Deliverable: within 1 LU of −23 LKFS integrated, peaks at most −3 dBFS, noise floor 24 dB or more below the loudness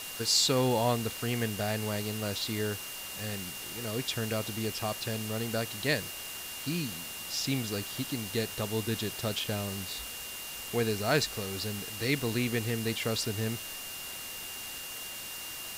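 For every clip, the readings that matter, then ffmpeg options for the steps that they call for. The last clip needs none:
interfering tone 2,800 Hz; level of the tone −44 dBFS; background noise floor −41 dBFS; target noise floor −56 dBFS; integrated loudness −32.0 LKFS; sample peak −13.5 dBFS; target loudness −23.0 LKFS
→ -af "bandreject=frequency=2800:width=30"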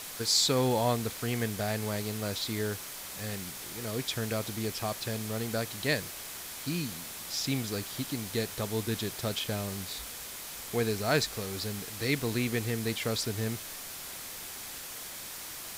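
interfering tone none found; background noise floor −42 dBFS; target noise floor −57 dBFS
→ -af "afftdn=noise_reduction=15:noise_floor=-42"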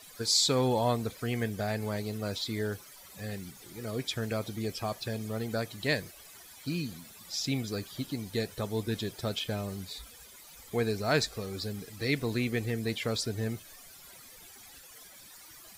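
background noise floor −52 dBFS; target noise floor −57 dBFS
→ -af "afftdn=noise_reduction=6:noise_floor=-52"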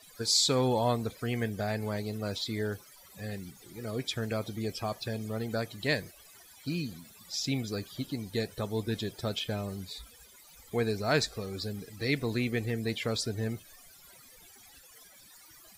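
background noise floor −55 dBFS; target noise floor −57 dBFS
→ -af "afftdn=noise_reduction=6:noise_floor=-55"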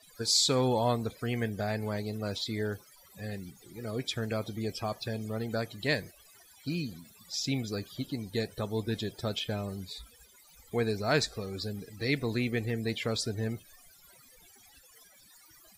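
background noise floor −59 dBFS; integrated loudness −32.5 LKFS; sample peak −13.0 dBFS; target loudness −23.0 LKFS
→ -af "volume=9.5dB"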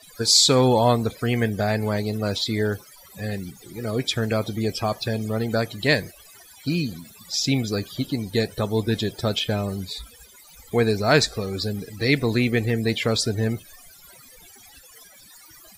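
integrated loudness −23.0 LKFS; sample peak −3.5 dBFS; background noise floor −49 dBFS

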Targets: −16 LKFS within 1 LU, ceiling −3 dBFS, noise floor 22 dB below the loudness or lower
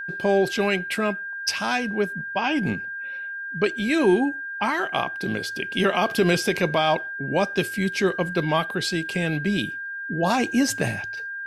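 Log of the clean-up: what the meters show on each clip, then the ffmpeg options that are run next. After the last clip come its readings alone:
interfering tone 1,600 Hz; level of the tone −30 dBFS; integrated loudness −24.0 LKFS; sample peak −9.5 dBFS; target loudness −16.0 LKFS
→ -af "bandreject=frequency=1600:width=30"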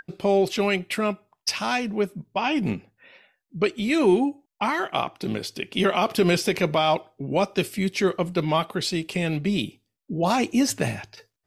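interfering tone none found; integrated loudness −24.5 LKFS; sample peak −9.5 dBFS; target loudness −16.0 LKFS
→ -af "volume=8.5dB,alimiter=limit=-3dB:level=0:latency=1"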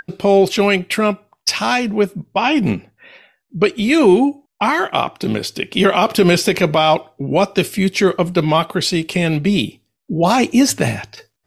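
integrated loudness −16.5 LKFS; sample peak −3.0 dBFS; background noise floor −73 dBFS

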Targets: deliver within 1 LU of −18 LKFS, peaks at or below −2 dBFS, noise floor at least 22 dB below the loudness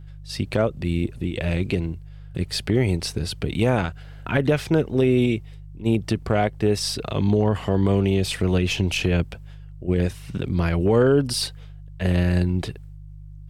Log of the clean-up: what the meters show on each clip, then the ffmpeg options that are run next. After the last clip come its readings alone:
mains hum 50 Hz; hum harmonics up to 150 Hz; level of the hum −38 dBFS; integrated loudness −23.0 LKFS; sample peak −8.5 dBFS; target loudness −18.0 LKFS
→ -af "bandreject=frequency=50:width_type=h:width=4,bandreject=frequency=100:width_type=h:width=4,bandreject=frequency=150:width_type=h:width=4"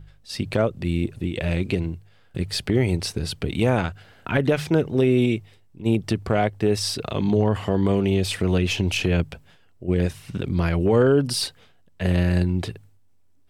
mains hum none found; integrated loudness −23.0 LKFS; sample peak −8.0 dBFS; target loudness −18.0 LKFS
→ -af "volume=5dB"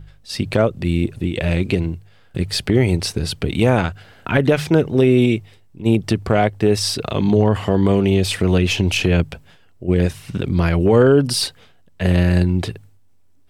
integrated loudness −18.0 LKFS; sample peak −3.0 dBFS; background noise floor −50 dBFS

